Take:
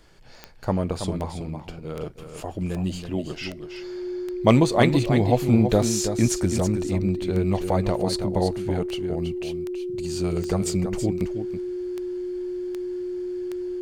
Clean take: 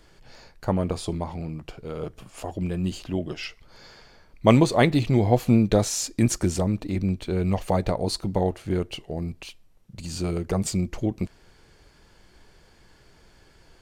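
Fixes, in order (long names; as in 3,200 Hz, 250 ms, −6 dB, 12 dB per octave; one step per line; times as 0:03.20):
clipped peaks rebuilt −4 dBFS
click removal
notch filter 360 Hz, Q 30
echo removal 326 ms −8.5 dB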